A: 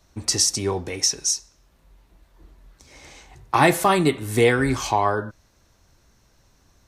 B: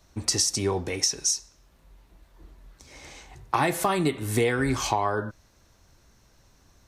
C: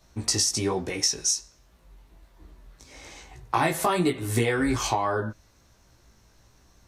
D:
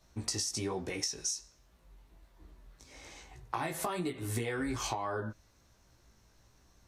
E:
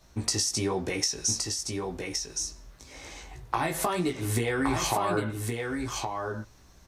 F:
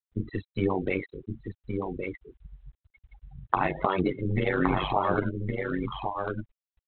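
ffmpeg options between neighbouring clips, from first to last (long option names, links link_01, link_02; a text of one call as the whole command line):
ffmpeg -i in.wav -af "acompressor=threshold=-20dB:ratio=6" out.wav
ffmpeg -i in.wav -af "flanger=delay=16:depth=2.7:speed=1.2,volume=3.5dB" out.wav
ffmpeg -i in.wav -af "acompressor=threshold=-25dB:ratio=6,volume=-6dB" out.wav
ffmpeg -i in.wav -af "aecho=1:1:1118:0.596,volume=7dB" out.wav
ffmpeg -i in.wav -af "tremolo=f=94:d=0.947,afftfilt=real='re*gte(hypot(re,im),0.0178)':imag='im*gte(hypot(re,im),0.0178)':win_size=1024:overlap=0.75,volume=6dB" -ar 8000 -c:a adpcm_g726 -b:a 32k out.wav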